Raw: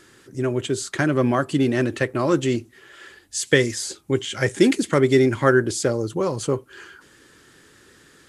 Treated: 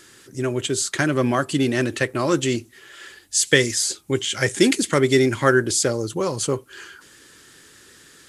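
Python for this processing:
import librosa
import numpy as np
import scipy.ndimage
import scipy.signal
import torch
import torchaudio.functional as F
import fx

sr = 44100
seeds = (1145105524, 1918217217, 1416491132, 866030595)

y = fx.high_shelf(x, sr, hz=2400.0, db=9.0)
y = F.gain(torch.from_numpy(y), -1.0).numpy()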